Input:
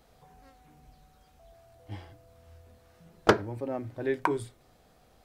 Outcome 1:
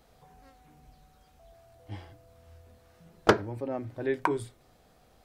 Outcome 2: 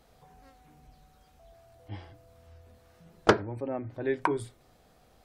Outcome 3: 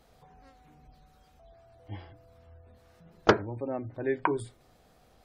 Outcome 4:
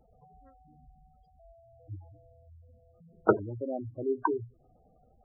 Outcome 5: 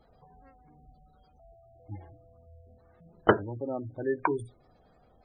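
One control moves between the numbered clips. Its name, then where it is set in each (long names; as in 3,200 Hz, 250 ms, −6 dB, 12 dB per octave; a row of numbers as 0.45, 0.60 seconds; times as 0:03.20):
gate on every frequency bin, under each frame's peak: −60, −45, −35, −10, −20 decibels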